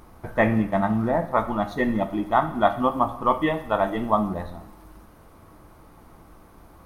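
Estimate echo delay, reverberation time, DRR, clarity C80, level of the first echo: no echo, 0.80 s, 9.0 dB, 15.0 dB, no echo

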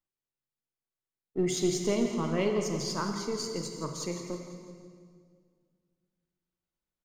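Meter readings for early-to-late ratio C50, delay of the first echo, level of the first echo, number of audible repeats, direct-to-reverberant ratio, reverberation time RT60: 4.5 dB, 167 ms, -11.5 dB, 4, 3.5 dB, 2.0 s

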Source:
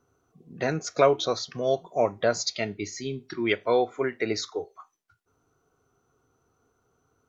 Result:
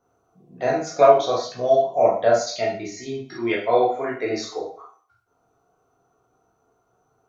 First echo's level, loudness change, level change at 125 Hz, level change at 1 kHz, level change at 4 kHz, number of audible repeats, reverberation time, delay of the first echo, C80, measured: no echo, +6.0 dB, -1.0 dB, +9.0 dB, -1.0 dB, no echo, 0.45 s, no echo, 10.0 dB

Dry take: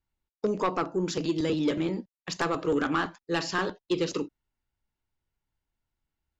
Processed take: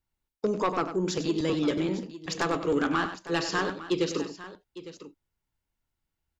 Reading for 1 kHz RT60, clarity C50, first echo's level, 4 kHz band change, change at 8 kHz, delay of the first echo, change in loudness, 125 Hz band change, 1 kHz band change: no reverb, no reverb, -10.5 dB, +1.0 dB, no reading, 97 ms, +0.5 dB, +0.5 dB, +0.5 dB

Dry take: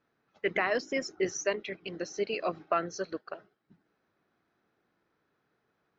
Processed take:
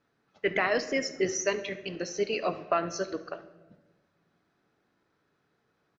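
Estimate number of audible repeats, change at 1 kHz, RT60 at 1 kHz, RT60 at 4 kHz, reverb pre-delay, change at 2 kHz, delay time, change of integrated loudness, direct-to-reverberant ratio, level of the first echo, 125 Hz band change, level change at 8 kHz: 1, +2.0 dB, 0.95 s, 0.80 s, 7 ms, +2.5 dB, 71 ms, +2.5 dB, 9.5 dB, -18.0 dB, +4.0 dB, no reading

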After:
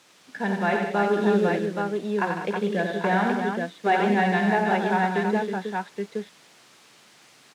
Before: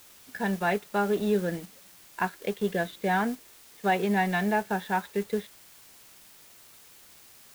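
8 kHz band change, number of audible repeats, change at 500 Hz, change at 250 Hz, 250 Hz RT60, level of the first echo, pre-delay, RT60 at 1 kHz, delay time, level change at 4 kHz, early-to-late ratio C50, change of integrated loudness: -2.5 dB, 6, +5.5 dB, +5.5 dB, no reverb, -12.0 dB, no reverb, no reverb, 54 ms, +3.5 dB, no reverb, +4.0 dB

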